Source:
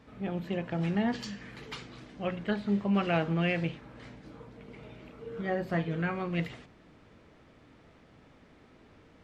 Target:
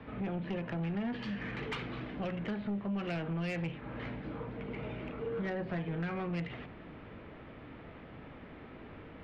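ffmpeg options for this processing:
-filter_complex "[0:a]lowpass=f=3.1k:w=0.5412,lowpass=f=3.1k:w=1.3066,acrossover=split=170|540|1600[a][b][c][d];[c]alimiter=level_in=11dB:limit=-24dB:level=0:latency=1,volume=-11dB[e];[a][b][e][d]amix=inputs=4:normalize=0,acompressor=threshold=-40dB:ratio=4,asoftclip=type=tanh:threshold=-38.5dB,volume=8.5dB"

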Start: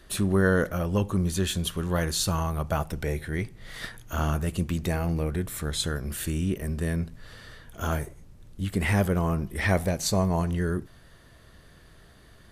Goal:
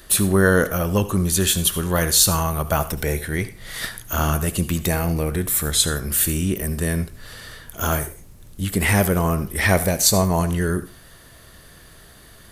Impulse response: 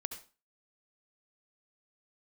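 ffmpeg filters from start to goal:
-filter_complex "[0:a]highshelf=f=7.5k:g=10.5,asplit=2[a][b];[1:a]atrim=start_sample=2205,lowshelf=f=270:g=-11,highshelf=f=11k:g=9[c];[b][c]afir=irnorm=-1:irlink=0,volume=-2dB[d];[a][d]amix=inputs=2:normalize=0,volume=3dB"

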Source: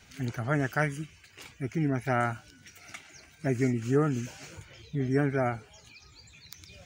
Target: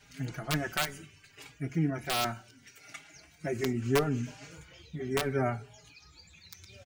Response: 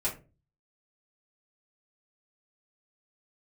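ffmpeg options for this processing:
-filter_complex "[0:a]asettb=1/sr,asplit=3[a][b][c];[a]atrim=end=2.244[d];[b]atrim=start=2.24:end=2.95,asetpts=PTS-STARTPTS,afade=t=in:d=0.004:c=qsin,afade=t=out:st=0.706:d=0.004:c=qsin,highpass=130[e];[c]atrim=start=2.946[f];[d][e]acrossfade=d=0.004:c1=hsin:c2=qsin[g];[g][f]acrossfade=d=0.004:c1=qsin:c2=hsin,asettb=1/sr,asplit=3[h][i][j];[h]atrim=end=3.814[k];[i]atrim=start=3.81:end=4.51,asetpts=PTS-STARTPTS,afade=t=in:d=0.004:c=qsin,afade=t=out:st=0.696:d=0.004:c=qsin,highshelf=f=8.4k:g=-9[l];[j]atrim=start=4.506[m];[k][l]acrossfade=d=0.004:c1=hsin:c2=qsin[n];[n][m]acrossfade=d=0.004:c1=qsin:c2=hsin,aeval=exprs='(mod(5.62*val(0)+1,2)-1)/5.62':c=same,asplit=2[o][p];[1:a]atrim=start_sample=2205,asetrate=29106,aresample=44100[q];[p][q]afir=irnorm=-1:irlink=0,volume=-23dB[r];[o][r]amix=inputs=2:normalize=0,asplit=2[s][t];[t]adelay=4.5,afreqshift=0.7[u];[s][u]amix=inputs=2:normalize=1"

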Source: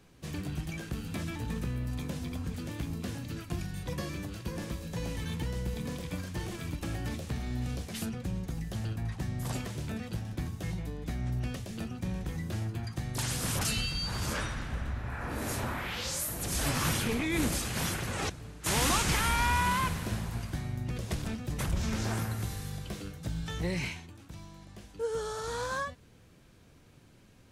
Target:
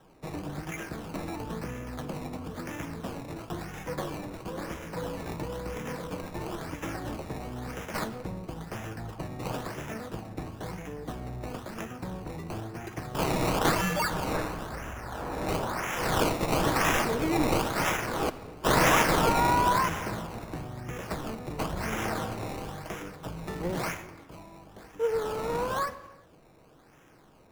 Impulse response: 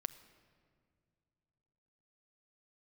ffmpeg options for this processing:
-filter_complex "[0:a]bass=f=250:g=-12,treble=f=4k:g=4,acrossover=split=710|1400[a][b][c];[c]acrusher=samples=19:mix=1:aa=0.000001:lfo=1:lforange=19:lforate=0.99[d];[a][b][d]amix=inputs=3:normalize=0[e];[1:a]atrim=start_sample=2205,afade=t=out:st=0.42:d=0.01,atrim=end_sample=18963[f];[e][f]afir=irnorm=-1:irlink=0,volume=7.5dB"

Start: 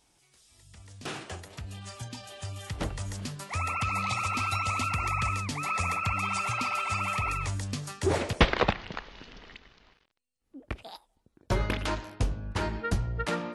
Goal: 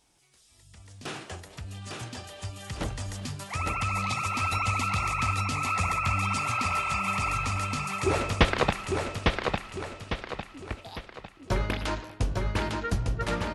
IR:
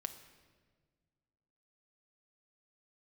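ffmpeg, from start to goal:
-af "aecho=1:1:853|1706|2559|3412|4265:0.668|0.281|0.118|0.0495|0.0208"

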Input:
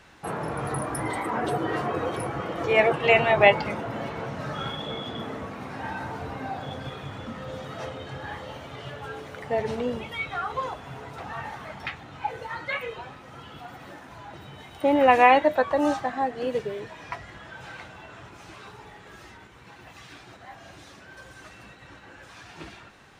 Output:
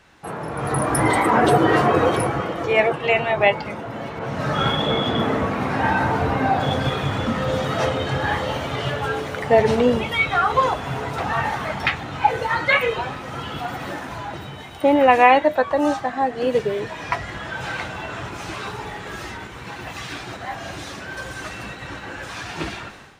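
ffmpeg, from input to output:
-filter_complex "[0:a]dynaudnorm=f=520:g=3:m=15dB,asettb=1/sr,asplit=3[a][b][c];[a]atrim=end=4.194[d];[b]atrim=start=4.19:end=6.6,asetpts=PTS-STARTPTS,afade=t=in:d=0.004:c=qsin,afade=t=out:st=2.406:d=0.004:c=qsin,adynamicequalizer=threshold=0.02:dfrequency=3400:dqfactor=0.7:tfrequency=3400:tqfactor=0.7:attack=5:release=100:ratio=0.375:range=2.5:mode=cutabove:tftype=highshelf[e];[c]atrim=start=6.596[f];[d][e]acrossfade=d=0.004:c1=hsin:c2=qsin[g];[g][f]acrossfade=d=0.004:c1=qsin:c2=hsin,volume=-1dB"

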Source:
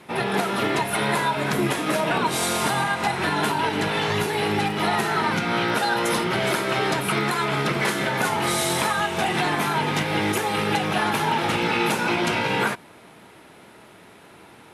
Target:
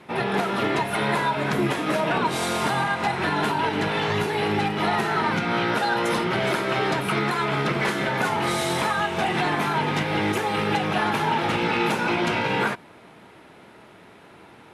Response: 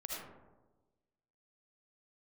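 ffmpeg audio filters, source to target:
-af "volume=14.5dB,asoftclip=hard,volume=-14.5dB,highshelf=f=6.3k:g=-11"

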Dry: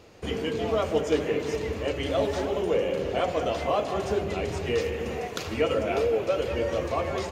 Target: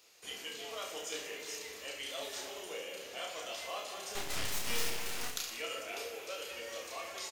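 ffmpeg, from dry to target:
-filter_complex "[0:a]aderivative,asettb=1/sr,asplit=3[a][b][c];[a]atrim=end=4.154[d];[b]atrim=start=4.15:end=5.31,asetpts=PTS-STARTPTS,afade=t=in:d=0.004:c=qsin,afade=t=out:st=1.156:d=0.004:c=qsin,aeval=exprs='0.0282*(cos(1*acos(clip(val(0)/0.0282,-1,1)))-cos(1*PI/2))+0.0141*(cos(8*acos(clip(val(0)/0.0282,-1,1)))-cos(8*PI/2))':c=same[e];[c]atrim=start=5.306[f];[d][e]acrossfade=d=0.004:c1=hsin:c2=qsin[g];[g][f]acrossfade=d=0.004:c1=qsin:c2=hsin,aecho=1:1:30|69|119.7|185.6|271.3:0.631|0.398|0.251|0.158|0.1,volume=1dB"

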